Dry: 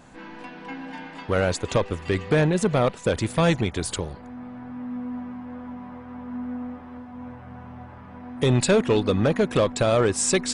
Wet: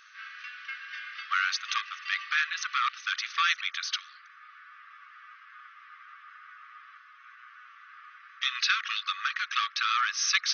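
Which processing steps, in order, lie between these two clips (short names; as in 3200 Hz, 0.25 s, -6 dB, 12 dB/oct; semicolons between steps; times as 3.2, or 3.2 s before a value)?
brick-wall FIR band-pass 1100–6400 Hz; gain +3.5 dB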